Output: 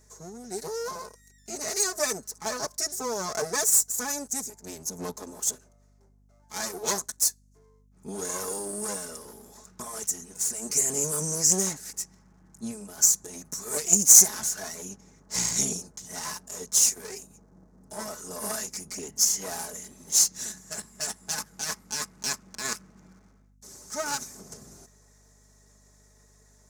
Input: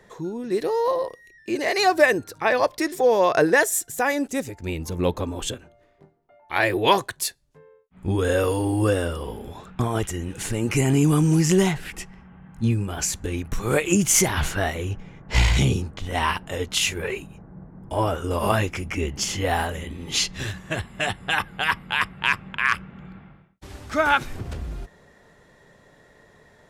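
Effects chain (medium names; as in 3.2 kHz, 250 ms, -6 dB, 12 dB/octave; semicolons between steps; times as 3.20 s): comb filter that takes the minimum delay 4.7 ms; high-pass 150 Hz; hum 50 Hz, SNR 23 dB; resonant high shelf 4.4 kHz +13.5 dB, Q 3; trim -10.5 dB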